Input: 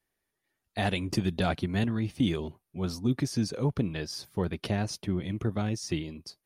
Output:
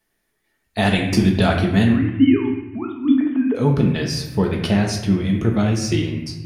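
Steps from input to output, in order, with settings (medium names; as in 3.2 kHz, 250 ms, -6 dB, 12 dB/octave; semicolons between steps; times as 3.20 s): 1.93–3.55 s: formants replaced by sine waves; reverberation RT60 0.95 s, pre-delay 5 ms, DRR 0.5 dB; trim +8.5 dB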